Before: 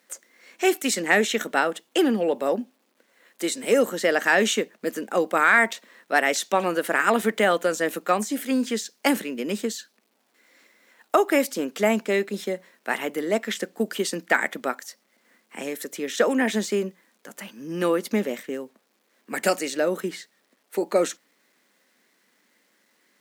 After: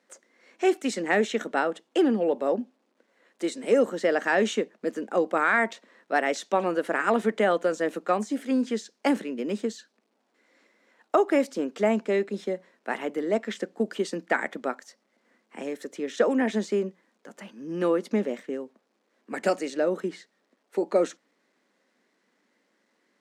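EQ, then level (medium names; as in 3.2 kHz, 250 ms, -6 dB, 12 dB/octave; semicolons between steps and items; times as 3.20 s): high-pass 170 Hz; distance through air 91 m; peaking EQ 2.8 kHz -6.5 dB 2.7 oct; 0.0 dB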